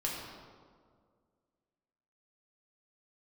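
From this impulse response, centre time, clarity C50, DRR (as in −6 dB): 86 ms, 1.0 dB, −4.0 dB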